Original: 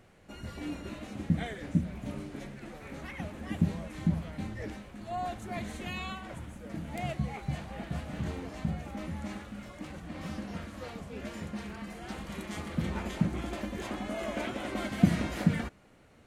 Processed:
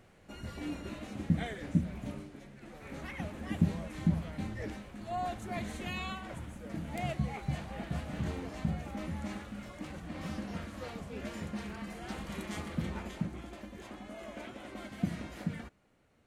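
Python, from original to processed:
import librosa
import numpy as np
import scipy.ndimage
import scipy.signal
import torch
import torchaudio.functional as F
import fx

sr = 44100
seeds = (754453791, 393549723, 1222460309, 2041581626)

y = fx.gain(x, sr, db=fx.line((2.04, -1.0), (2.42, -9.5), (2.96, -0.5), (12.54, -0.5), (13.51, -10.0)))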